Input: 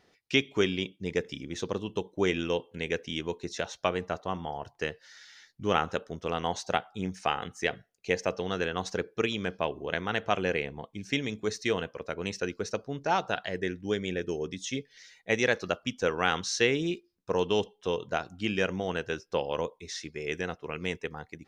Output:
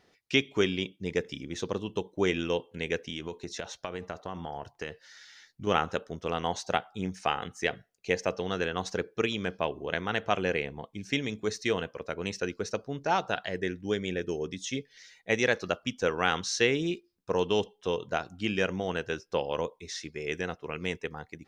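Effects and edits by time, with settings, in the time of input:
0:03.05–0:05.67: downward compressor, threshold −31 dBFS

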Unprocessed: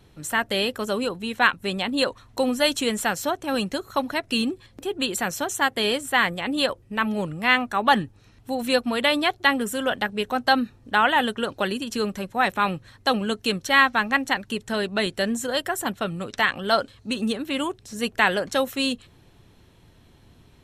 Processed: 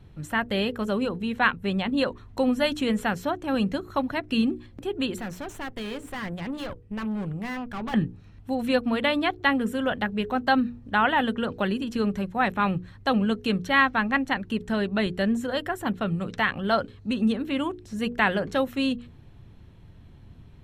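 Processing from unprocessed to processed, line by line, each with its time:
0:05.18–0:07.94: tube saturation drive 29 dB, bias 0.65
whole clip: bass and treble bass +10 dB, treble −9 dB; mains-hum notches 60/120/180/240/300/360/420/480 Hz; dynamic equaliser 8,000 Hz, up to −4 dB, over −44 dBFS, Q 0.8; level −2.5 dB

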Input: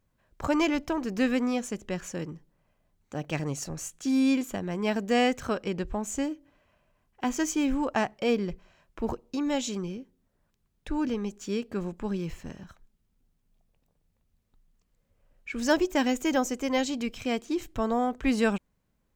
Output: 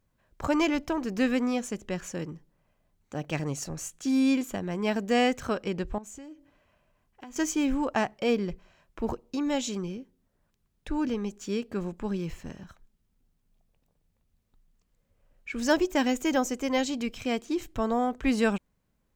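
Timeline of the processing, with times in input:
0:05.98–0:07.36: downward compressor, threshold −42 dBFS

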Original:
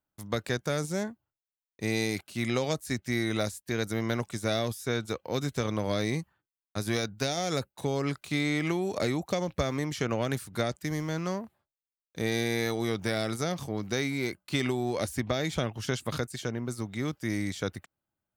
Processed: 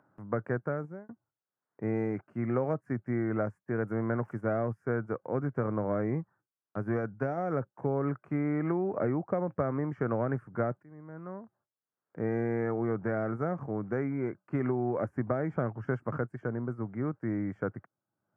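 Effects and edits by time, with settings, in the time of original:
0:00.61–0:01.09: fade out
0:03.87–0:04.41: spike at every zero crossing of −31.5 dBFS
0:10.83–0:12.35: fade in, from −23.5 dB
whole clip: elliptic band-pass filter 110–1,500 Hz, stop band 40 dB; upward compression, threshold −51 dBFS

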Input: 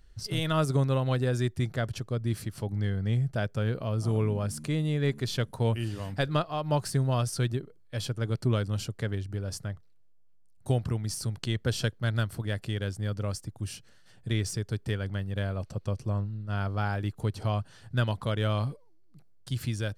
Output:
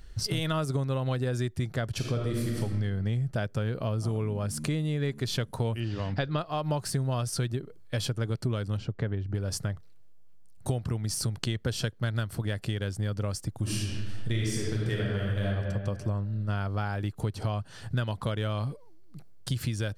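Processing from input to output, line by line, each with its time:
0:01.96–0:02.60: thrown reverb, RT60 1.5 s, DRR −1.5 dB
0:05.80–0:06.39: low-pass filter 5,400 Hz 24 dB per octave
0:08.77–0:09.35: head-to-tape spacing loss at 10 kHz 27 dB
0:13.58–0:15.47: thrown reverb, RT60 1.5 s, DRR −5 dB
whole clip: downward compressor 6 to 1, threshold −36 dBFS; level +9 dB

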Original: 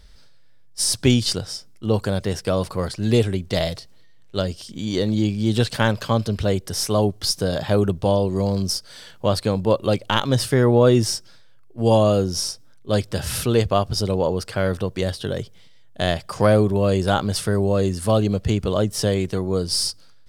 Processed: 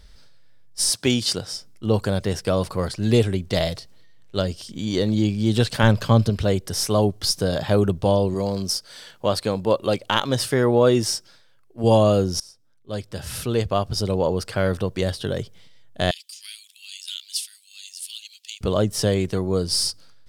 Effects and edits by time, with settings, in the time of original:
0:00.89–0:01.52: high-pass filter 480 Hz → 120 Hz 6 dB per octave
0:05.83–0:06.30: low-shelf EQ 210 Hz +8 dB
0:08.34–0:11.84: low-shelf EQ 170 Hz −9 dB
0:12.40–0:14.36: fade in, from −21.5 dB
0:16.11–0:18.61: Butterworth high-pass 2,700 Hz

